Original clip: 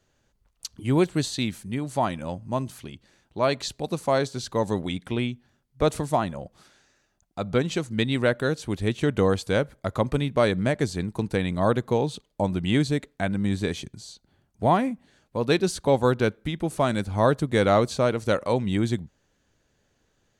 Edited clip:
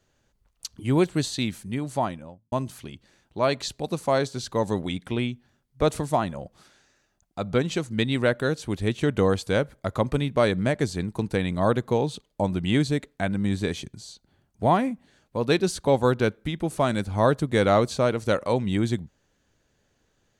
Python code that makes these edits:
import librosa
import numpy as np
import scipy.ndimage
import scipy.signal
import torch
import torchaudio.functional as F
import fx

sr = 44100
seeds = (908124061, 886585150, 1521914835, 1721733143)

y = fx.studio_fade_out(x, sr, start_s=1.88, length_s=0.64)